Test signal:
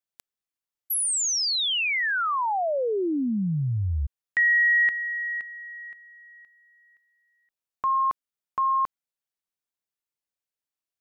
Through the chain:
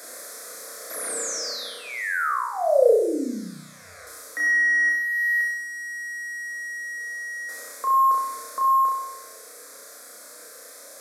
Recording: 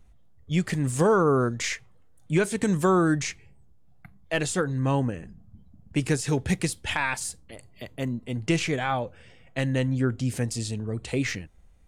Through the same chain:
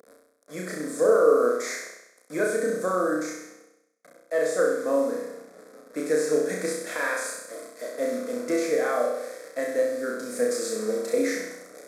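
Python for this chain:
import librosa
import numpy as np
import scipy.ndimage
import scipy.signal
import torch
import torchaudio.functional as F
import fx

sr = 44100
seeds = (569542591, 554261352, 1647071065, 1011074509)

p1 = fx.delta_mod(x, sr, bps=64000, step_db=-35.5)
p2 = fx.rider(p1, sr, range_db=4, speed_s=0.5)
p3 = fx.highpass_res(p2, sr, hz=430.0, q=4.9)
p4 = fx.fixed_phaser(p3, sr, hz=580.0, stages=8)
p5 = p4 + fx.room_flutter(p4, sr, wall_m=5.6, rt60_s=0.84, dry=0)
y = p5 * 10.0 ** (-2.0 / 20.0)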